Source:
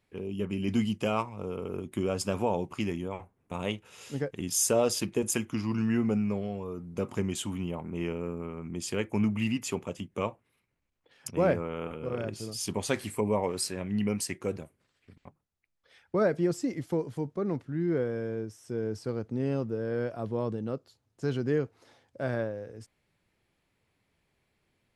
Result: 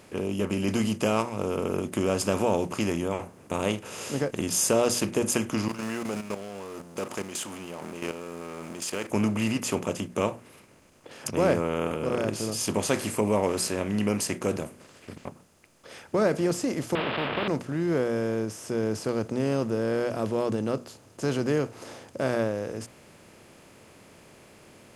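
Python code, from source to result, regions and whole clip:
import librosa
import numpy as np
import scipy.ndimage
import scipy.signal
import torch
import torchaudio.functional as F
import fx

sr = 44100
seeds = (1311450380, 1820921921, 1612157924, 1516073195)

y = fx.chain(x, sr, fx.law_mismatch(coded='mu'),
    fx.highpass(hz=910.0, slope=6),
    fx.level_steps(step_db=13), at=(5.68, 9.11))
y = fx.chain(y, sr, fx.delta_mod(bps=16000, step_db=-41.5),
    fx.highpass(hz=150.0, slope=12),
    fx.spectral_comp(ratio=4.0), at=(16.95, 17.48))
y = fx.bin_compress(y, sr, power=0.6)
y = fx.hum_notches(y, sr, base_hz=60, count=4)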